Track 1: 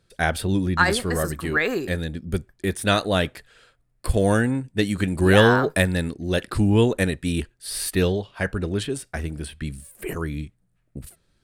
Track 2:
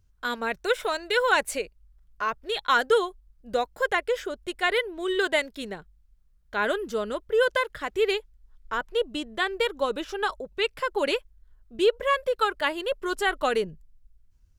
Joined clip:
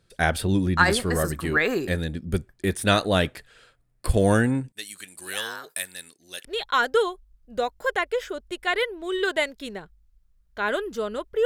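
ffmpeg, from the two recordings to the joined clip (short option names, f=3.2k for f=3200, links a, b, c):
-filter_complex "[0:a]asettb=1/sr,asplit=3[a][b][c];[a]atrim=end=4.724[d];[b]atrim=start=4.72:end=6.45,asetpts=PTS-STARTPTS,afade=t=in:d=0.004:c=qsin,afade=t=out:st=1.726:d=0.004:c=qsin,aderivative[e];[c]atrim=start=6.446[f];[d][e]acrossfade=d=0.004:c1=hsin:c2=qsin[g];[g][f]acrossfade=d=0.004:c1=qsin:c2=hsin,apad=whole_dur=11.45,atrim=end=11.45,atrim=end=6.452[h];[1:a]atrim=start=2.408:end=7.41[i];[h][i]acrossfade=d=0.004:c1=hsin:c2=hsin"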